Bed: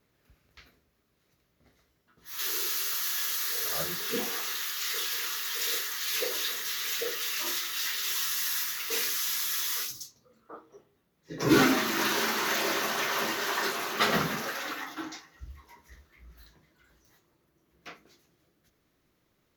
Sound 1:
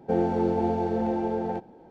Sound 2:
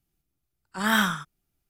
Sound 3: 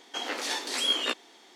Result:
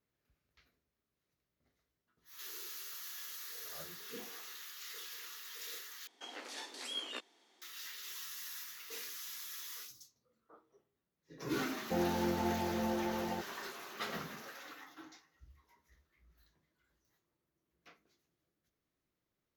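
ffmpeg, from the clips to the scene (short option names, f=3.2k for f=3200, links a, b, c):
-filter_complex "[0:a]volume=-15.5dB[a];[1:a]bandreject=f=440:w=13[b];[a]asplit=2[c][d];[c]atrim=end=6.074[e];[3:a]atrim=end=1.55,asetpts=PTS-STARTPTS,volume=-14.5dB[f];[d]atrim=start=7.616[g];[b]atrim=end=1.9,asetpts=PTS-STARTPTS,volume=-8.5dB,afade=t=in:d=0.004:c=hsin,afade=t=out:st=1.896:d=0.004:c=hsin,adelay=11820[h];[e][f]acrossfade=d=0.004:c1=hsin:c2=hsin[i];[i][g]acrossfade=d=0.004:c1=hsin:c2=hsin[j];[j][h]amix=inputs=2:normalize=0"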